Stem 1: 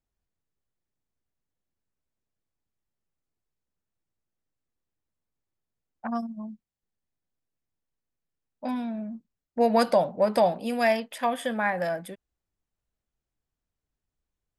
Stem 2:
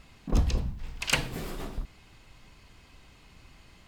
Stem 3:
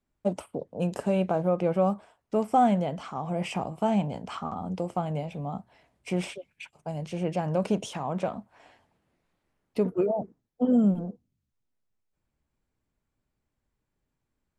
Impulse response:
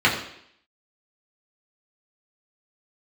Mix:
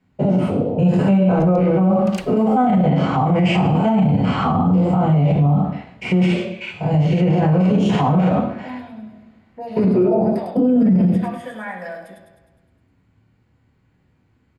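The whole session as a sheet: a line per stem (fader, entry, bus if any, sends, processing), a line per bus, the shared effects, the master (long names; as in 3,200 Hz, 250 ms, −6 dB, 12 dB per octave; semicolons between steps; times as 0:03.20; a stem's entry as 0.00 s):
−10.0 dB, 0.00 s, send −14 dB, echo send −4 dB, brickwall limiter −17.5 dBFS, peak gain reduction 7 dB
−9.0 dB, 1.05 s, no send, no echo send, no processing
+2.5 dB, 0.00 s, send −3.5 dB, no echo send, spectrum averaged block by block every 100 ms; low-shelf EQ 300 Hz +7.5 dB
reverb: on, RT60 0.70 s, pre-delay 3 ms
echo: repeating echo 103 ms, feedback 58%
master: brickwall limiter −9 dBFS, peak gain reduction 20.5 dB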